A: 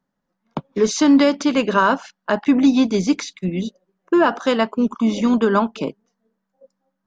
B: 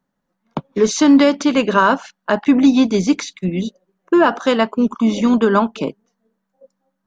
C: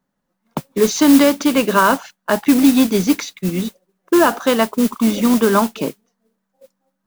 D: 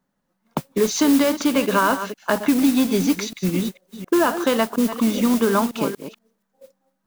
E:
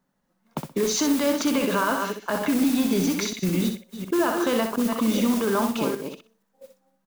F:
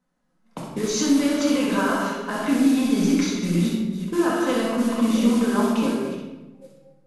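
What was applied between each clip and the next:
notch filter 5,000 Hz, Q 17; level +2.5 dB
noise that follows the level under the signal 15 dB
delay that plays each chunk backwards 238 ms, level −13 dB; downward compressor 2 to 1, threshold −18 dBFS, peak gain reduction 6.5 dB
brickwall limiter −15 dBFS, peak gain reduction 8.5 dB; on a send: repeating echo 63 ms, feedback 19%, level −6.5 dB
flanger 2 Hz, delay 0.3 ms, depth 5.6 ms, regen −66%; linear-phase brick-wall low-pass 12,000 Hz; rectangular room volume 580 cubic metres, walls mixed, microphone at 2 metres

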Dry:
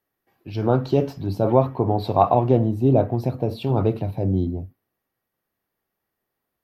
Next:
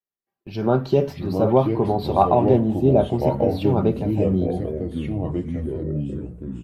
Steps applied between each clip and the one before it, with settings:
noise gate with hold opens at −32 dBFS
comb filter 5.1 ms, depth 45%
delay with pitch and tempo change per echo 490 ms, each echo −4 semitones, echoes 3, each echo −6 dB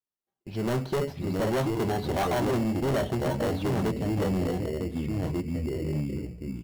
in parallel at −3.5 dB: decimation without filtering 18×
on the sum: gain into a clipping stage and back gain 16 dB
level −7.5 dB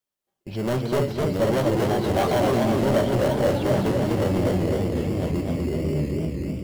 in parallel at 0 dB: brickwall limiter −34.5 dBFS, peak gain reduction 11 dB
on the sum: hollow resonant body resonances 570/3,200 Hz, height 7 dB
feedback echo with a swinging delay time 250 ms, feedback 59%, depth 142 cents, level −3 dB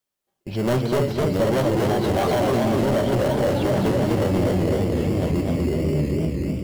brickwall limiter −16.5 dBFS, peak gain reduction 5.5 dB
level +3.5 dB

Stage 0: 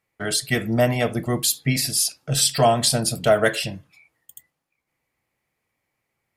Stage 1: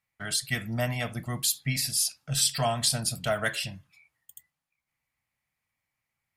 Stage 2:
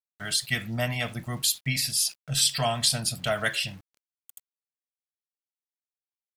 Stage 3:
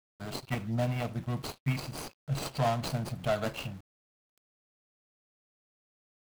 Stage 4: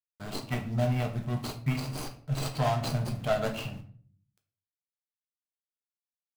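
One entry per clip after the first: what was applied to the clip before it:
parametric band 400 Hz −14 dB 1.3 octaves; level −5 dB
centre clipping without the shift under −49 dBFS; dynamic equaliser 3,100 Hz, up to +5 dB, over −43 dBFS, Q 1
running median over 25 samples
rectangular room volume 46 cubic metres, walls mixed, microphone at 0.39 metres

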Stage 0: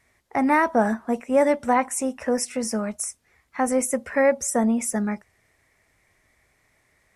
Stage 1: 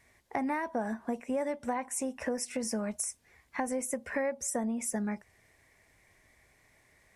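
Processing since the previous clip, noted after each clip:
downward compressor 5 to 1, threshold −31 dBFS, peak gain reduction 15 dB
notch filter 1,300 Hz, Q 8.5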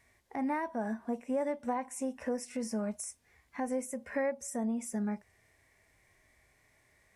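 harmonic and percussive parts rebalanced percussive −9 dB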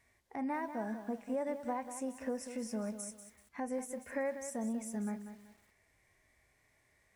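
feedback echo at a low word length 191 ms, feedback 35%, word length 9 bits, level −10 dB
level −4 dB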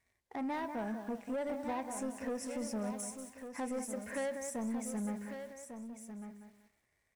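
leveller curve on the samples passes 2
single-tap delay 1,149 ms −9 dB
level −5 dB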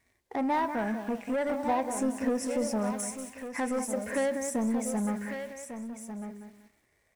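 auto-filter bell 0.45 Hz 280–2,600 Hz +6 dB
level +7 dB

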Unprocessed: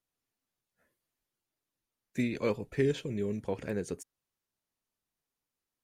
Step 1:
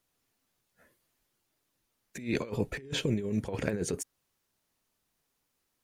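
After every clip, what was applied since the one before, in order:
compressor whose output falls as the input rises −36 dBFS, ratio −0.5
level +5 dB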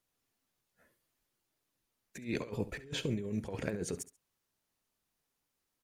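repeating echo 68 ms, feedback 24%, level −16 dB
level −5 dB

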